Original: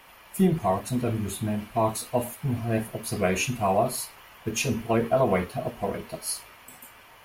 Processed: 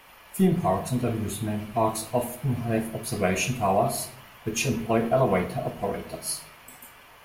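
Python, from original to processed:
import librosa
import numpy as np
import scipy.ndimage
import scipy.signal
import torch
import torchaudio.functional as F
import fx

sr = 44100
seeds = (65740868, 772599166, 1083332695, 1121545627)

y = fx.room_shoebox(x, sr, seeds[0], volume_m3=150.0, walls='mixed', distance_m=0.32)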